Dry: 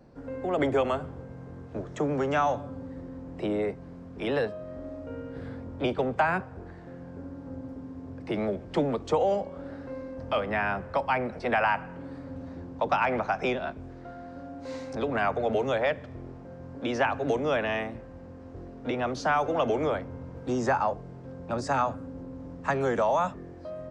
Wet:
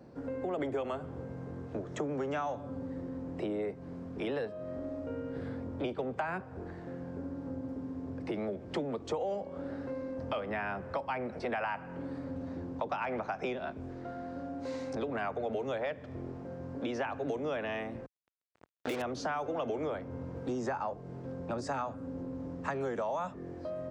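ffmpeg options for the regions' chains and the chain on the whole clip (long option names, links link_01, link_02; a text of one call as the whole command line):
ffmpeg -i in.wav -filter_complex "[0:a]asettb=1/sr,asplit=3[link_01][link_02][link_03];[link_01]atrim=end=18.064[link_04];[link_02]atrim=start=18.06:end=19.02,asetpts=PTS-STARTPTS,afade=type=in:duration=0.004:curve=qsin,afade=type=out:start_time=0.956:duration=0.004:curve=qsin,lowshelf=frequency=370:gain=-9,acontrast=44,acrusher=bits=4:mix=0:aa=0.5[link_05];[link_03]atrim=start=19.016[link_06];[link_04][link_05]acrossfade=duration=0.004:curve1=hsin:curve2=qsin[link_07];[link_07][link_06]acrossfade=duration=0.004:curve1=qsin:curve2=hsin,highpass=64,equalizer=frequency=360:width_type=o:width=1.5:gain=3,acompressor=threshold=-35dB:ratio=3" out.wav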